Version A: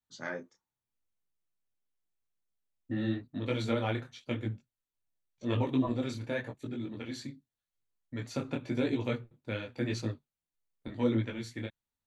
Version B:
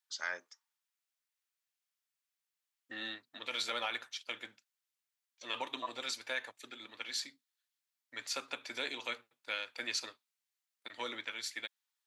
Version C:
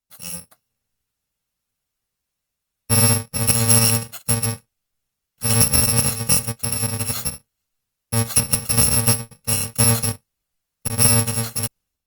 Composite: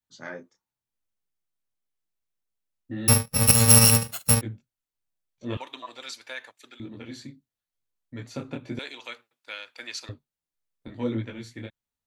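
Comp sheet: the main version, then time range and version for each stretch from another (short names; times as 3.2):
A
3.08–4.41 from C
5.57–6.8 from B
8.79–10.09 from B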